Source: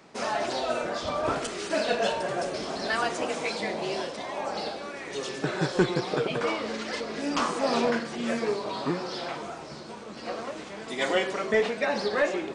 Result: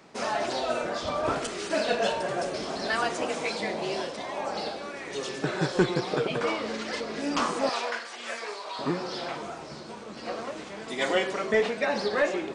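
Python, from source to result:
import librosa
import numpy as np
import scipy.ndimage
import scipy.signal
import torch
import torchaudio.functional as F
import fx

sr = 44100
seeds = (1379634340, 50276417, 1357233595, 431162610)

y = fx.highpass(x, sr, hz=830.0, slope=12, at=(7.69, 8.79))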